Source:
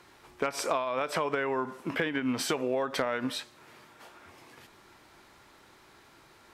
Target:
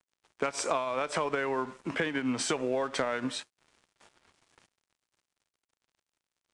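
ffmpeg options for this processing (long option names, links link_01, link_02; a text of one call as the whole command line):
ffmpeg -i in.wav -filter_complex "[0:a]acrossover=split=120[link_01][link_02];[link_02]aexciter=amount=1.5:drive=4.5:freq=6400[link_03];[link_01][link_03]amix=inputs=2:normalize=0,aeval=exprs='sgn(val(0))*max(abs(val(0))-0.00335,0)':channel_layout=same,aresample=22050,aresample=44100" out.wav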